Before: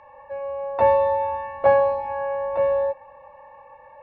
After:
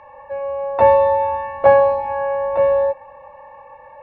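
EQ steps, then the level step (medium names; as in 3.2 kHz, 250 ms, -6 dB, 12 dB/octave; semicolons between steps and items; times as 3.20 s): distance through air 55 m; +5.5 dB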